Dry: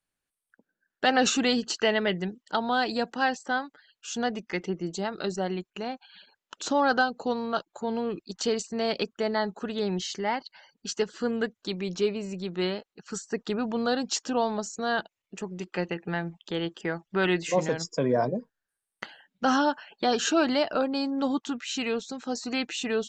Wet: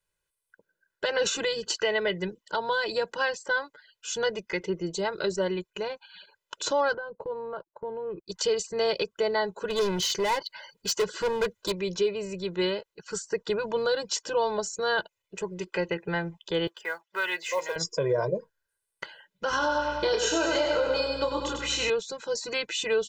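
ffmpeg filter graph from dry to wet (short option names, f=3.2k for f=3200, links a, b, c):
-filter_complex "[0:a]asettb=1/sr,asplit=3[a][b][c];[a]atrim=end=6.944[d];[b]atrim=start=6.94:end=8.28,asetpts=PTS-STARTPTS,afade=t=in:d=0.004:c=qsin,afade=t=out:st=1.336:d=0.004:c=qsin,agate=range=-15dB:threshold=-42dB:ratio=16:release=100:detection=peak,lowpass=1.2k,acompressor=threshold=-36dB:ratio=2.5:attack=3.2:release=140:knee=1:detection=peak[e];[c]atrim=start=8.276[f];[d][e]acrossfade=d=0.004:c1=hsin:c2=qsin[g];[g][f]acrossfade=d=0.004:c1=qsin:c2=hsin,asettb=1/sr,asplit=3[h][i][j];[h]atrim=end=9.704[k];[i]atrim=start=9.7:end=11.72,asetpts=PTS-STARTPTS,afade=t=in:d=0.004:c=qsin,afade=t=out:st=2.016:d=0.004:c=qsin,acontrast=29,asoftclip=type=hard:threshold=-26dB[l];[j]atrim=start=11.716[m];[k][l]acrossfade=d=0.004:c1=hsin:c2=qsin[n];[n][m]acrossfade=d=0.004:c1=qsin:c2=hsin,asettb=1/sr,asplit=3[o][p][q];[o]atrim=end=16.674[r];[p]atrim=start=16.67:end=17.76,asetpts=PTS-STARTPTS,afade=t=in:d=0.004:c=qsin,afade=t=out:st=1.086:d=0.004:c=qsin,highpass=890,highshelf=f=6.1k:g=-10,acrusher=bits=6:mode=log:mix=0:aa=0.000001[s];[q]atrim=start=17.756[t];[r][s]acrossfade=d=0.004:c1=hsin:c2=qsin[u];[u][t]acrossfade=d=0.004:c1=qsin:c2=hsin,asettb=1/sr,asplit=3[v][w][x];[v]atrim=end=19.504[y];[w]atrim=start=19.5:end=21.9,asetpts=PTS-STARTPTS,afade=t=in:d=0.004:c=qsin,afade=t=out:st=2.396:d=0.004:c=qsin,aeval=exprs='val(0)+0.00447*(sin(2*PI*60*n/s)+sin(2*PI*2*60*n/s)/2+sin(2*PI*3*60*n/s)/3+sin(2*PI*4*60*n/s)/4+sin(2*PI*5*60*n/s)/5)':c=same,asplit=2[z][aa];[aa]adelay=27,volume=-4dB[ab];[z][ab]amix=inputs=2:normalize=0,atrim=end_sample=105840,aecho=1:1:98|196|294|392|490|588|686:0.562|0.309|0.17|0.0936|0.0515|0.0283|0.0156,atrim=end_sample=105840[ac];[x]atrim=start=21.896[ad];[y][ac]acrossfade=d=0.004:c1=hsin:c2=qsin[ae];[ae][ad]acrossfade=d=0.004:c1=qsin:c2=hsin,aecho=1:1:2:0.99,alimiter=limit=-17dB:level=0:latency=1:release=176"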